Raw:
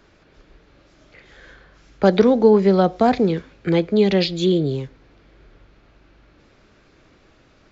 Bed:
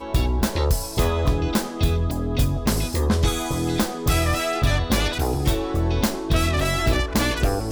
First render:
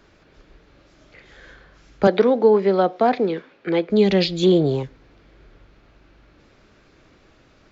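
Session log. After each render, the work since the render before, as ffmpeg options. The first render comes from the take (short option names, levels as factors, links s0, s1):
-filter_complex "[0:a]asettb=1/sr,asplit=3[s0][s1][s2];[s0]atrim=end=2.074[s3];[s1]atrim=start=2.07:end=3.9,asetpts=PTS-STARTPTS,afade=t=in:d=0.004:c=qsin,afade=t=out:st=1.826:d=0.004:c=qsin,highpass=300,lowpass=3700[s4];[s2]atrim=start=3.896[s5];[s3][s4]acrossfade=d=0.004:c1=hsin:c2=qsin[s6];[s6][s5]acrossfade=d=0.004:c1=qsin:c2=hsin,asettb=1/sr,asplit=3[s7][s8][s9];[s7]atrim=end=4.434[s10];[s8]atrim=start=4.43:end=4.83,asetpts=PTS-STARTPTS,afade=t=in:d=0.004:c=qsin,afade=t=out:st=0.396:d=0.004:c=qsin,equalizer=f=820:t=o:w=1.1:g=14[s11];[s9]atrim=start=4.826[s12];[s10][s11]acrossfade=d=0.004:c1=hsin:c2=qsin[s13];[s13][s12]acrossfade=d=0.004:c1=qsin:c2=hsin"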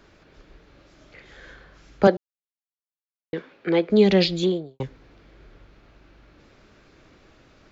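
-filter_complex "[0:a]asplit=4[s0][s1][s2][s3];[s0]atrim=end=2.17,asetpts=PTS-STARTPTS,afade=t=out:st=2.166:d=0.004:c=hsin[s4];[s1]atrim=start=2.17:end=3.33,asetpts=PTS-STARTPTS,volume=0[s5];[s2]atrim=start=3.33:end=4.8,asetpts=PTS-STARTPTS,afade=t=in:d=0.004:c=hsin,afade=t=out:st=1.01:d=0.46:c=qua[s6];[s3]atrim=start=4.8,asetpts=PTS-STARTPTS,afade=t=in:d=0.004:c=hsin[s7];[s4][s5][s6][s7]concat=n=4:v=0:a=1"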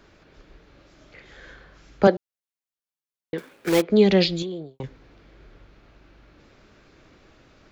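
-filter_complex "[0:a]asettb=1/sr,asplit=3[s0][s1][s2];[s0]atrim=end=3.384[s3];[s1]atrim=start=3.38:end=3.82,asetpts=PTS-STARTPTS,afade=t=in:d=0.004:c=qsin,afade=t=out:st=0.436:d=0.004:c=qsin,acrusher=bits=2:mode=log:mix=0:aa=0.000001[s4];[s2]atrim=start=3.816[s5];[s3][s4]acrossfade=d=0.004:c1=hsin:c2=qsin[s6];[s6][s5]acrossfade=d=0.004:c1=qsin:c2=hsin,asettb=1/sr,asplit=3[s7][s8][s9];[s7]atrim=end=4.424[s10];[s8]atrim=start=4.42:end=4.84,asetpts=PTS-STARTPTS,afade=t=in:d=0.004:c=qsin,afade=t=out:st=0.416:d=0.004:c=qsin,acompressor=threshold=0.0398:ratio=6:attack=3.2:release=140:knee=1:detection=peak[s11];[s9]atrim=start=4.836[s12];[s10][s11]acrossfade=d=0.004:c1=hsin:c2=qsin[s13];[s13][s12]acrossfade=d=0.004:c1=qsin:c2=hsin"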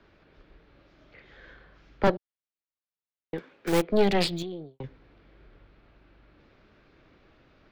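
-filter_complex "[0:a]acrossover=split=130|1200|4900[s0][s1][s2][s3];[s3]aeval=exprs='val(0)*gte(abs(val(0)),0.00944)':c=same[s4];[s0][s1][s2][s4]amix=inputs=4:normalize=0,aeval=exprs='(tanh(5.62*val(0)+0.8)-tanh(0.8))/5.62':c=same"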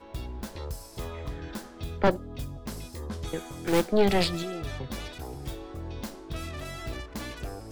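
-filter_complex "[1:a]volume=0.158[s0];[0:a][s0]amix=inputs=2:normalize=0"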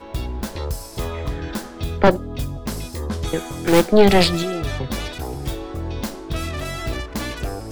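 -af "volume=3.16,alimiter=limit=0.794:level=0:latency=1"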